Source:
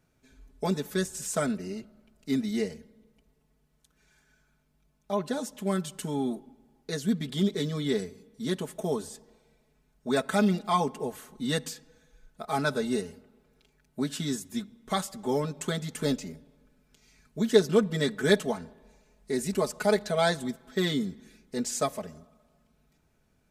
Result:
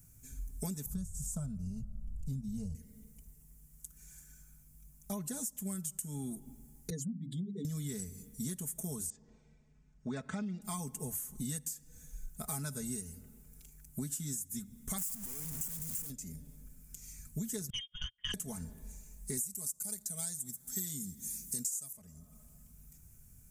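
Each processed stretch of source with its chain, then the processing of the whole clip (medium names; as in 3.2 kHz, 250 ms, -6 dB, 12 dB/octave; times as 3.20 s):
0.86–2.75 s: RIAA curve playback + static phaser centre 820 Hz, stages 4
6.90–7.65 s: spectral contrast enhancement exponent 2.2 + peaking EQ 110 Hz -13 dB 0.9 oct + hum notches 50/100/150/200/250/300/350 Hz
9.10–10.62 s: Gaussian low-pass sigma 2.1 samples + bass shelf 90 Hz -12 dB
14.98–16.10 s: one-bit comparator + comb 4.3 ms, depth 50%
17.70–18.34 s: gate -28 dBFS, range -32 dB + frequency inversion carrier 3.4 kHz + transformer saturation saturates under 680 Hz
19.37–21.93 s: high-pass 140 Hz 6 dB/octave + tone controls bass +6 dB, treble +15 dB
whole clip: FFT filter 110 Hz 0 dB, 390 Hz -20 dB, 620 Hz -22 dB, 2.2 kHz -16 dB, 4 kHz -18 dB, 7 kHz +4 dB, 13 kHz +10 dB; compression 16:1, threshold -49 dBFS; trim +13.5 dB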